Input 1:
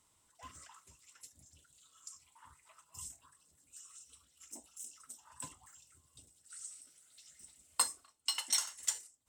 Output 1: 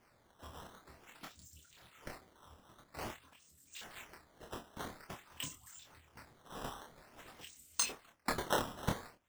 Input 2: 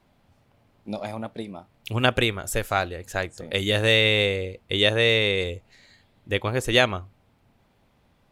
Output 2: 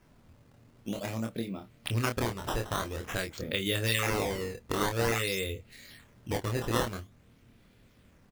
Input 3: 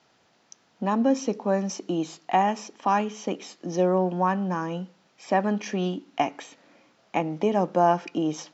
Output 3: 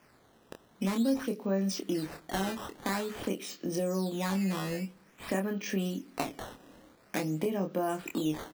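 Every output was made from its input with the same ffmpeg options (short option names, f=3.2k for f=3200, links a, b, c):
-filter_complex "[0:a]equalizer=f=830:t=o:w=0.87:g=-12,acompressor=threshold=-36dB:ratio=2.5,acrusher=samples=11:mix=1:aa=0.000001:lfo=1:lforange=17.6:lforate=0.49,asplit=2[a][b];[b]adelay=26,volume=-5dB[c];[a][c]amix=inputs=2:normalize=0,volume=3dB"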